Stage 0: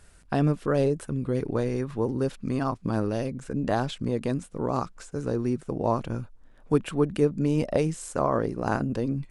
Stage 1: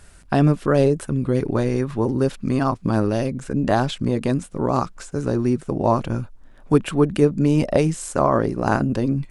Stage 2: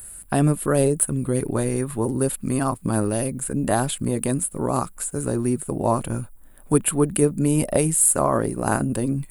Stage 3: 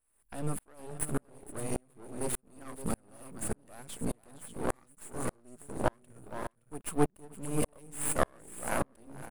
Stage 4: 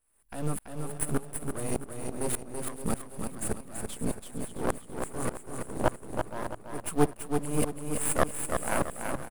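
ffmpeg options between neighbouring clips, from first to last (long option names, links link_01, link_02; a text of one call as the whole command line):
ffmpeg -i in.wav -af "bandreject=frequency=470:width=12,volume=7dB" out.wav
ffmpeg -i in.wav -af "aexciter=amount=11.2:drive=9.2:freq=8600,volume=-2.5dB" out.wav
ffmpeg -i in.wav -af "aecho=1:1:467|569:0.335|0.282,aeval=exprs='max(val(0),0)':channel_layout=same,aeval=exprs='val(0)*pow(10,-40*if(lt(mod(-1.7*n/s,1),2*abs(-1.7)/1000),1-mod(-1.7*n/s,1)/(2*abs(-1.7)/1000),(mod(-1.7*n/s,1)-2*abs(-1.7)/1000)/(1-2*abs(-1.7)/1000))/20)':channel_layout=same" out.wav
ffmpeg -i in.wav -filter_complex "[0:a]asplit=2[link_01][link_02];[link_02]acrusher=bits=3:mode=log:mix=0:aa=0.000001,volume=-8.5dB[link_03];[link_01][link_03]amix=inputs=2:normalize=0,aecho=1:1:333|666|999|1332|1665:0.531|0.202|0.0767|0.0291|0.0111" out.wav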